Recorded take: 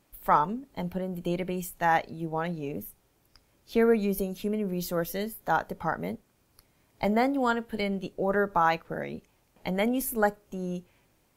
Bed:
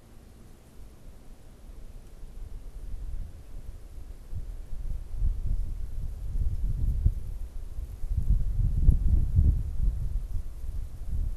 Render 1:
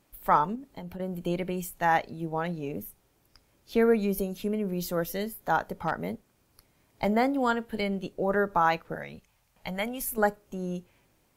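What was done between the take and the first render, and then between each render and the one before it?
0.55–1 compressor, threshold -36 dBFS; 5.74–7.09 overloaded stage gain 17 dB; 8.95–10.18 bell 330 Hz -13 dB 1.3 oct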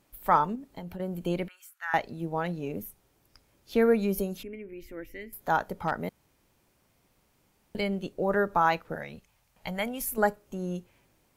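1.48–1.94 ladder high-pass 1300 Hz, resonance 70%; 4.43–5.33 EQ curve 110 Hz 0 dB, 180 Hz -23 dB, 270 Hz -1 dB, 650 Hz -19 dB, 1200 Hz -20 dB, 2200 Hz +3 dB, 3700 Hz -21 dB; 6.09–7.75 room tone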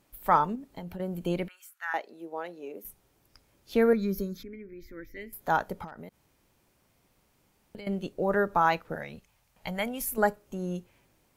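1.93–2.85 ladder high-pass 290 Hz, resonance 30%; 3.93–5.17 fixed phaser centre 2800 Hz, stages 6; 5.84–7.87 compressor 12:1, threshold -39 dBFS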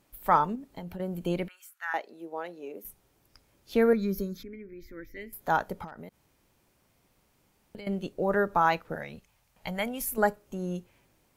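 nothing audible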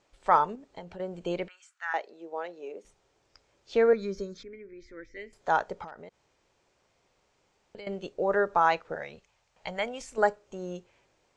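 steep low-pass 7700 Hz 48 dB/oct; resonant low shelf 330 Hz -6.5 dB, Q 1.5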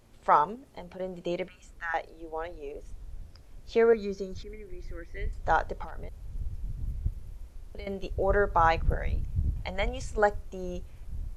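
add bed -7 dB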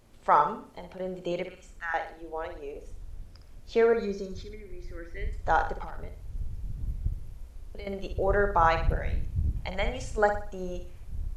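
flutter echo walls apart 10.2 m, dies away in 0.43 s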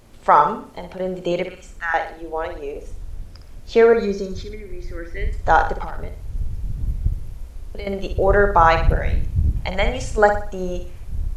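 gain +9.5 dB; limiter -1 dBFS, peak gain reduction 2 dB

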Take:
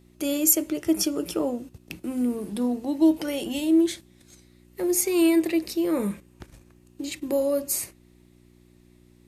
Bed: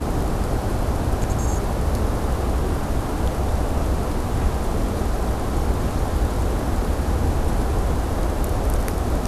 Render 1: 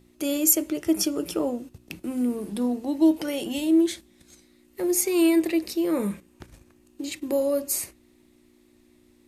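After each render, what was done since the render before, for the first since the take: de-hum 60 Hz, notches 3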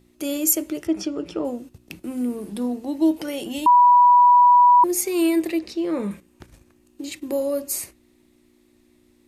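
0.87–1.45 air absorption 140 m; 3.66–4.84 bleep 978 Hz -9.5 dBFS; 5.59–6.11 LPF 5600 Hz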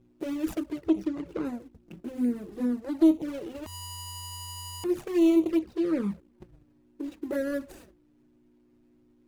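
median filter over 41 samples; envelope flanger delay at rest 7.9 ms, full sweep at -19.5 dBFS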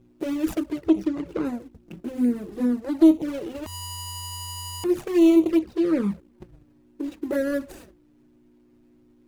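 gain +5 dB

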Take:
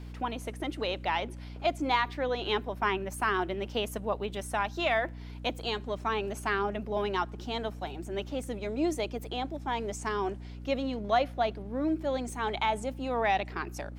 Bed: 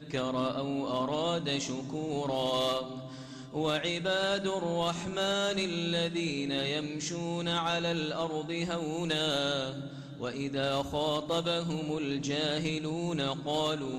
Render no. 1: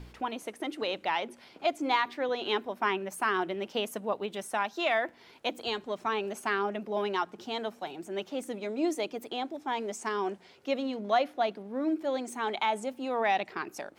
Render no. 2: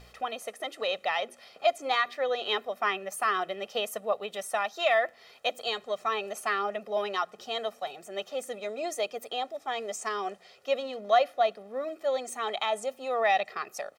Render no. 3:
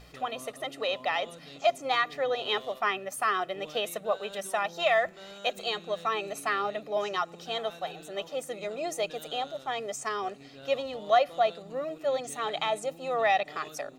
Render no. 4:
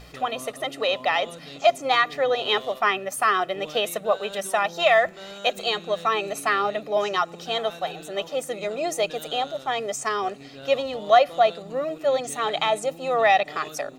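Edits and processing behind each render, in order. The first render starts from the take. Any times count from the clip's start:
de-hum 60 Hz, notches 5
tone controls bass -12 dB, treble +2 dB; comb 1.6 ms, depth 78%
add bed -17 dB
gain +6.5 dB

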